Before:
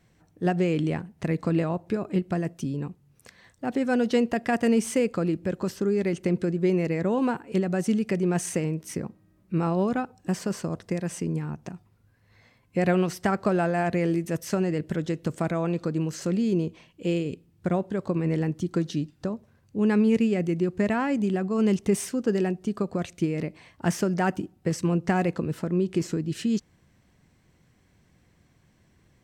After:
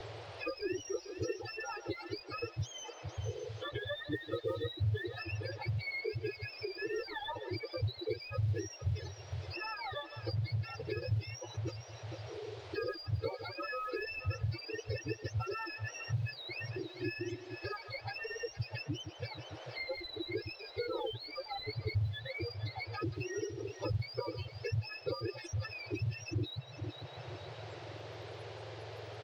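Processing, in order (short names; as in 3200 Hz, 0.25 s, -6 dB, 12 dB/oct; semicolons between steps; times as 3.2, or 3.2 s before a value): spectrum mirrored in octaves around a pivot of 940 Hz; compressor 3:1, threshold -33 dBFS, peak gain reduction 11.5 dB; on a send: multi-head echo 0.153 s, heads first and third, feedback 47%, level -14.5 dB; on the sum: overloaded stage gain 27.5 dB; comb 2.3 ms, depth 81%; spectral gate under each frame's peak -10 dB strong; in parallel at -5 dB: short-mantissa float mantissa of 2-bit; on the sum: band noise 500–4800 Hz -50 dBFS; EQ curve 120 Hz 0 dB, 170 Hz -18 dB, 310 Hz +3 dB, 650 Hz -3 dB, 1100 Hz -14 dB, 6000 Hz -20 dB; three-band squash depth 70%; gain +1 dB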